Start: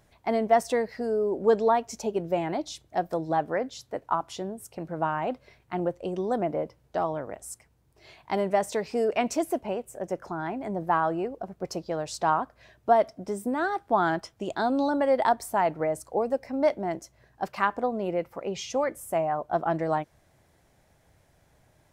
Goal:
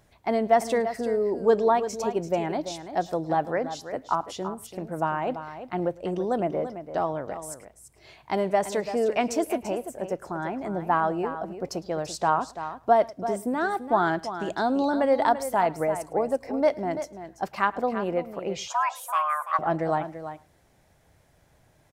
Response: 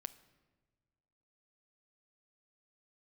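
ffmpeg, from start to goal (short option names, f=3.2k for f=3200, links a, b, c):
-filter_complex "[0:a]asplit=2[a][b];[b]aecho=0:1:338:0.282[c];[a][c]amix=inputs=2:normalize=0,asettb=1/sr,asplit=3[d][e][f];[d]atrim=end=18.684[g];[e]atrim=start=18.68:end=19.59,asetpts=PTS-STARTPTS,afade=t=in:d=0.004:c=qsin,afade=t=out:st=0.906:d=0.004:c=qsin,afreqshift=450[h];[f]atrim=start=19.586[i];[g][h]acrossfade=d=0.004:c1=hsin:c2=qsin[j];[j][i]acrossfade=d=0.004:c1=qsin:c2=hsin,asplit=2[k][l];[l]aecho=0:1:107:0.075[m];[k][m]amix=inputs=2:normalize=0,volume=1dB"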